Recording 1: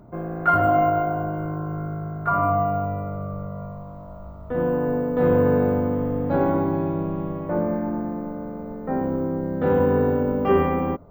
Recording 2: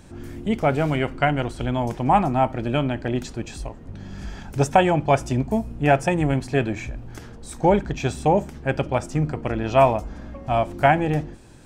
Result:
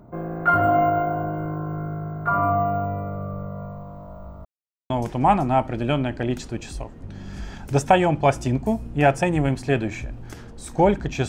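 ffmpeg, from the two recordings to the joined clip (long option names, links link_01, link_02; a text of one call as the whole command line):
ffmpeg -i cue0.wav -i cue1.wav -filter_complex "[0:a]apad=whole_dur=11.28,atrim=end=11.28,asplit=2[link_01][link_02];[link_01]atrim=end=4.45,asetpts=PTS-STARTPTS,afade=type=out:start_time=4.446:duration=0.004:curve=hsin[link_03];[link_02]atrim=start=4.45:end=4.9,asetpts=PTS-STARTPTS,volume=0[link_04];[1:a]atrim=start=1.75:end=8.13,asetpts=PTS-STARTPTS,afade=type=in:duration=0.004:curve=hsin[link_05];[link_03][link_04][link_05]concat=n=3:v=0:a=1" out.wav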